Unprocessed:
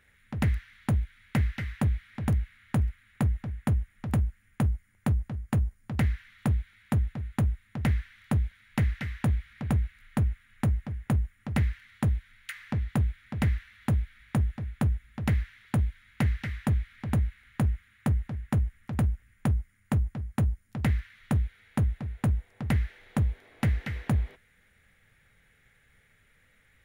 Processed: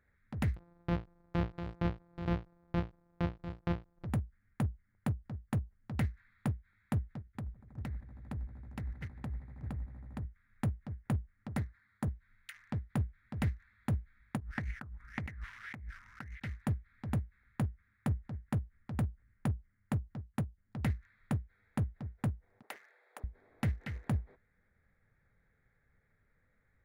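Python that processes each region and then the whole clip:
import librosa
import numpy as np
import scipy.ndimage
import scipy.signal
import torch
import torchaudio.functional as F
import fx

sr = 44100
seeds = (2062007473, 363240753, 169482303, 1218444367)

y = fx.chain(x, sr, fx.sample_sort(block=256),
    fx.air_absorb(metres=340.0), at=(0.56, 4.05))
y = fx.chain(y, sr, fx.level_steps(step_db=16),
    fx.echo_swell(ms=80, loudest=5, wet_db=-18.0), at=(7.19, 10.25))
y = fx.chain(y, sr, fx.highpass(hz=120.0, slope=6),
    fx.peak_eq(hz=2800.0, db=-8.5, octaves=0.68), at=(11.48, 12.08))
y = fx.chain(y, sr, fx.over_compress(threshold_db=-36.0, ratio=-1.0),
    fx.bell_lfo(hz=1.8, low_hz=980.0, high_hz=2200.0, db=17), at=(14.4, 16.4))
y = fx.chain(y, sr, fx.highpass(hz=470.0, slope=24),
    fx.high_shelf(hz=9200.0, db=6.5), at=(22.62, 23.24))
y = fx.wiener(y, sr, points=15)
y = fx.end_taper(y, sr, db_per_s=250.0)
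y = F.gain(torch.from_numpy(y), -6.5).numpy()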